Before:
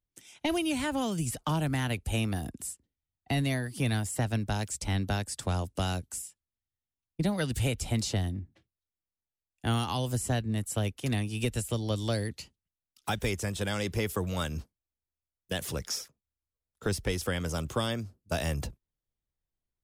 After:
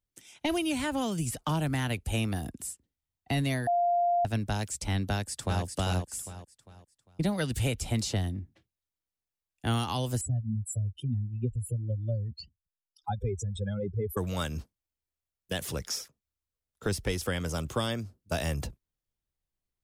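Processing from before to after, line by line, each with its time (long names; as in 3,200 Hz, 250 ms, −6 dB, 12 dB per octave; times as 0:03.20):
0:03.67–0:04.25: beep over 698 Hz −22.5 dBFS
0:05.09–0:05.64: delay throw 400 ms, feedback 35%, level −5 dB
0:10.21–0:14.17: expanding power law on the bin magnitudes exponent 3.3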